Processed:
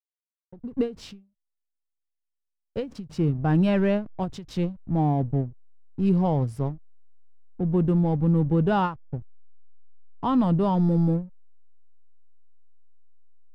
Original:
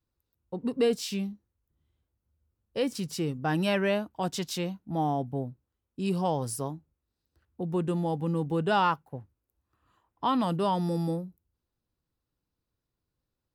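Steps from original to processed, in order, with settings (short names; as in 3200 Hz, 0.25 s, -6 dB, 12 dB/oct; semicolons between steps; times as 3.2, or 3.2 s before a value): backlash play -38.5 dBFS; RIAA curve playback; ending taper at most 180 dB/s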